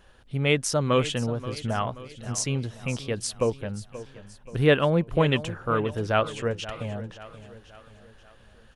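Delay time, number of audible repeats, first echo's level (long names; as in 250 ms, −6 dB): 530 ms, 4, −15.0 dB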